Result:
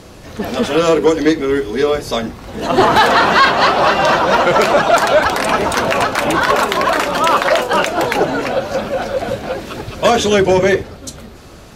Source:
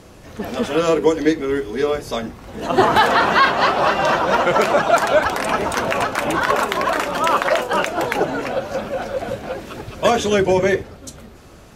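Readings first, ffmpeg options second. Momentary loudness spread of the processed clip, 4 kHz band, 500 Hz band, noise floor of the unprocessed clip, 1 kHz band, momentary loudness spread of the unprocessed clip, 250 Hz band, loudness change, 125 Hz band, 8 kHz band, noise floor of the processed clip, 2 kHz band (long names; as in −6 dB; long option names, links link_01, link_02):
12 LU, +6.0 dB, +4.5 dB, −43 dBFS, +4.0 dB, 13 LU, +4.5 dB, +4.5 dB, +4.5 dB, +5.5 dB, −37 dBFS, +4.5 dB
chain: -af "acontrast=64,equalizer=frequency=4200:width=2:gain=3.5,volume=-1dB"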